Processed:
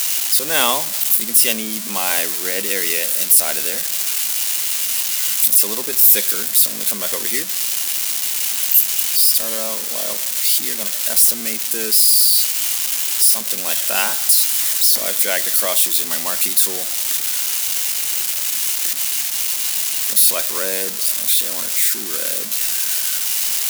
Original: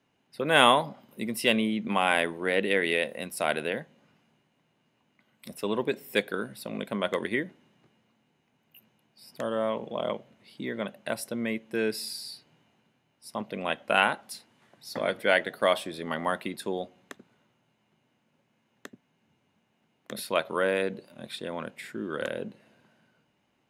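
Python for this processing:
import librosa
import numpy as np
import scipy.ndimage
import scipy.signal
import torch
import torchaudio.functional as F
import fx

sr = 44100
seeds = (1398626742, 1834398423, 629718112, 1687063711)

y = x + 0.5 * 10.0 ** (-13.5 / 20.0) * np.diff(np.sign(x), prepend=np.sign(x[:1]))
y = scipy.signal.sosfilt(scipy.signal.butter(2, 150.0, 'highpass', fs=sr, output='sos'), y)
y = fx.high_shelf(y, sr, hz=3200.0, db=9.0)
y = y * 10.0 ** (-1.5 / 20.0)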